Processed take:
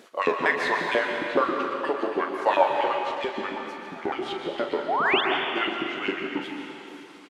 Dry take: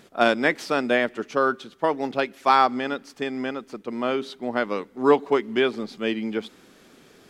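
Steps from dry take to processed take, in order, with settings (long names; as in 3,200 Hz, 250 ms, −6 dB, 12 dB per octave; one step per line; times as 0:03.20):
pitch shifter swept by a sawtooth −9 semitones, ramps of 458 ms
in parallel at +1 dB: downward compressor, threshold −30 dBFS, peak gain reduction 16 dB
on the sum: auto-filter high-pass saw up 7.4 Hz 270–3,500 Hz
sound drawn into the spectrogram rise, 0:04.88–0:05.21, 610–3,700 Hz −18 dBFS
double-tracking delay 41 ms −9.5 dB
on a send at −2 dB: convolution reverb RT60 2.7 s, pre-delay 116 ms
on the sum: level −6.5 dB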